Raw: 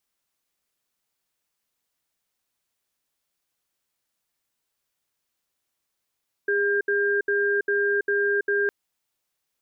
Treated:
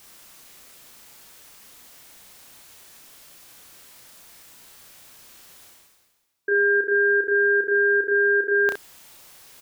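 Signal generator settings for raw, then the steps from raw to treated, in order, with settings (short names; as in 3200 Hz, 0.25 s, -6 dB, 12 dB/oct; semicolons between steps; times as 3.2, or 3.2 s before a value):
cadence 406 Hz, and 1600 Hz, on 0.33 s, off 0.07 s, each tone -22.5 dBFS 2.21 s
reverse; upward compressor, threshold -27 dBFS; reverse; early reflections 32 ms -4 dB, 65 ms -7.5 dB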